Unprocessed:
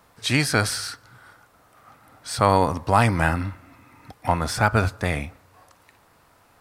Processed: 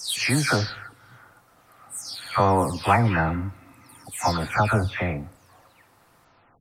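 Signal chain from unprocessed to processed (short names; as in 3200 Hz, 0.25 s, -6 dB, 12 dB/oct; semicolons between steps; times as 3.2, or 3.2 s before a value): spectral delay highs early, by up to 0.362 s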